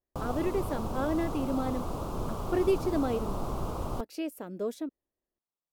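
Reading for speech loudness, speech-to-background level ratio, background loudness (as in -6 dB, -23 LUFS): -33.0 LUFS, 3.5 dB, -36.5 LUFS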